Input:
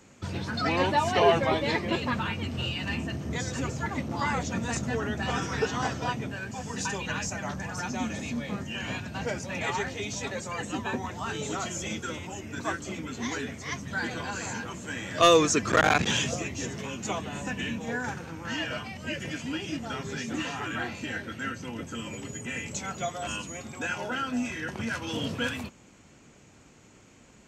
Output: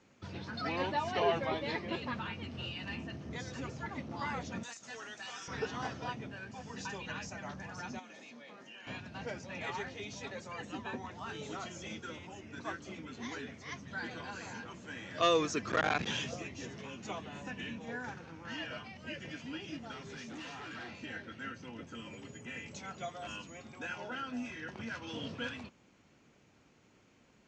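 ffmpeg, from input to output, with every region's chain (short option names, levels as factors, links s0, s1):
-filter_complex "[0:a]asettb=1/sr,asplit=3[s0][s1][s2];[s0]atrim=end=4.634[s3];[s1]atrim=start=4.63:end=5.48,asetpts=PTS-STARTPTS,afade=t=in:d=0.004:c=qsin,afade=t=out:st=0.846:d=0.004:c=qsin,highpass=f=1300:p=1,equalizer=f=8000:w=0.84:g=14.5,acompressor=threshold=0.0316:ratio=12:attack=3.2:release=140:knee=1:detection=peak[s4];[s2]atrim=start=5.476[s5];[s3][s4]acrossfade=d=0.004:c1=hsin:c2=qsin[s6];[s6][s5]acrossfade=d=0.004:c1=qsin:c2=hsin,asettb=1/sr,asplit=3[s7][s8][s9];[s7]atrim=end=7.994[s10];[s8]atrim=start=7.99:end=8.87,asetpts=PTS-STARTPTS,afade=t=in:d=0.004:c=qsin,afade=t=out:st=0.876:d=0.004:c=qsin,highpass=370,acompressor=threshold=0.0112:ratio=5:attack=3.2:release=140:knee=1:detection=peak[s11];[s9]atrim=start=8.866[s12];[s10][s11]acrossfade=d=0.004:c1=hsin:c2=qsin[s13];[s13][s12]acrossfade=d=0.004:c1=qsin:c2=hsin,asettb=1/sr,asplit=3[s14][s15][s16];[s14]atrim=end=19.914[s17];[s15]atrim=start=19.91:end=20.91,asetpts=PTS-STARTPTS,afade=t=in:d=0.004:c=qsin,afade=t=out:st=0.996:d=0.004:c=qsin,highshelf=f=7100:g=8.5,asoftclip=type=hard:threshold=0.0224[s18];[s16]atrim=start=20.906[s19];[s17][s18]acrossfade=d=0.004:c1=hsin:c2=qsin[s20];[s20][s19]acrossfade=d=0.004:c1=qsin:c2=hsin,lowpass=f=5800:w=0.5412,lowpass=f=5800:w=1.3066,lowshelf=f=80:g=-7,volume=0.355"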